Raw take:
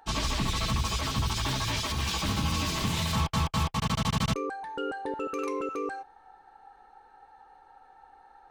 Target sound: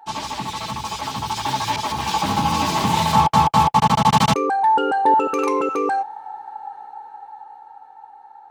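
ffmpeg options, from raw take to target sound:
-filter_complex "[0:a]highpass=140,equalizer=f=860:w=4.8:g=15,dynaudnorm=f=370:g=11:m=13dB,asettb=1/sr,asplit=3[a][b][c];[a]atrim=end=1.764[d];[b]atrim=start=1.76:end=4.13,asetpts=PTS-STARTPTS,afade=t=in:d=0.004:c=qsin,afade=t=out:st=2.366:d=0.004:c=qsin,adynamicequalizer=threshold=0.0398:dfrequency=1600:dqfactor=0.7:tfrequency=1600:tqfactor=0.7:attack=5:release=100:ratio=0.375:range=2:mode=cutabove:tftype=highshelf[e];[c]atrim=start=4.126[f];[d][e]acrossfade=d=0.004:c1=hsin:c2=qsin[g];[g][f]acrossfade=d=0.004:c1=qsin:c2=hsin"

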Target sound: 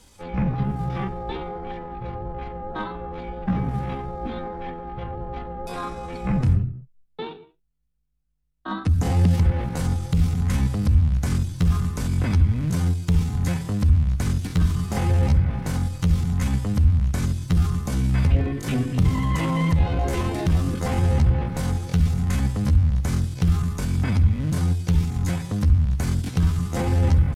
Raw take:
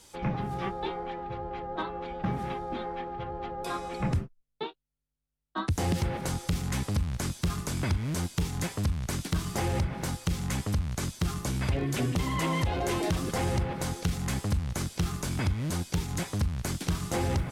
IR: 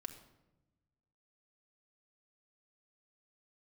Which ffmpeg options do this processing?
-filter_complex "[0:a]asplit=2[a][b];[b]bass=f=250:g=12,treble=f=4k:g=-10[c];[1:a]atrim=start_sample=2205,afade=t=out:st=0.18:d=0.01,atrim=end_sample=8379[d];[c][d]afir=irnorm=-1:irlink=0,volume=3dB[e];[a][e]amix=inputs=2:normalize=0,atempo=0.64,volume=-3dB"

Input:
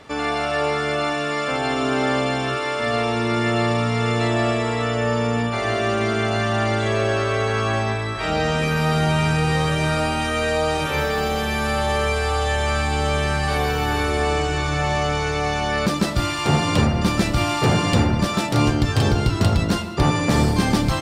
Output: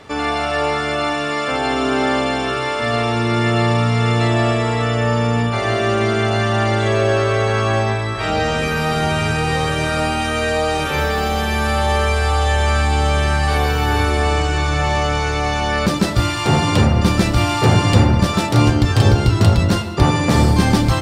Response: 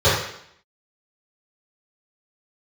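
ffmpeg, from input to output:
-filter_complex "[0:a]asplit=2[a][b];[1:a]atrim=start_sample=2205,lowshelf=f=100:g=12[c];[b][c]afir=irnorm=-1:irlink=0,volume=-37.5dB[d];[a][d]amix=inputs=2:normalize=0,volume=3dB"

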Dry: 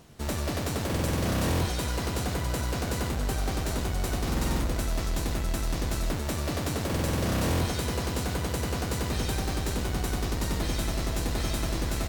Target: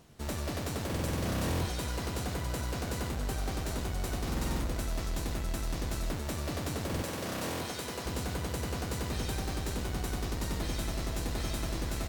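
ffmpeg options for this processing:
-filter_complex "[0:a]asettb=1/sr,asplit=3[a][b][c];[a]atrim=end=7.024[d];[b]atrim=start=7.02:end=8.06,asetpts=PTS-STARTPTS,afade=t=in:d=0.004:c=qsin,afade=t=out:st=1.036:d=0.004:c=qsin,highpass=f=300:p=1[e];[c]atrim=start=8.056[f];[d][e]acrossfade=d=0.004:c1=hsin:c2=qsin[g];[g][f]acrossfade=d=0.004:c1=qsin:c2=hsin,volume=-5dB"

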